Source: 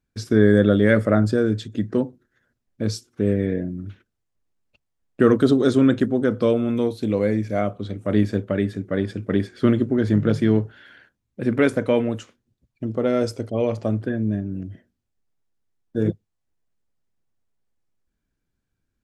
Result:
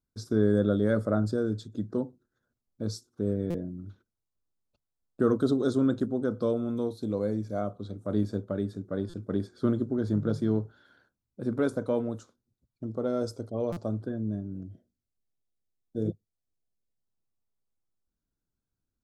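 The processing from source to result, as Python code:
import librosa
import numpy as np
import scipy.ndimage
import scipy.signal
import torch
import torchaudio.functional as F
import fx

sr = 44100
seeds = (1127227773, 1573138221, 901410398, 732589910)

y = fx.band_shelf(x, sr, hz=2300.0, db=-15.5, octaves=1.0)
y = fx.spec_box(y, sr, start_s=14.64, length_s=2.37, low_hz=760.0, high_hz=2100.0, gain_db=-8)
y = fx.buffer_glitch(y, sr, at_s=(3.5, 9.09, 13.72), block=256, repeats=7)
y = F.gain(torch.from_numpy(y), -8.5).numpy()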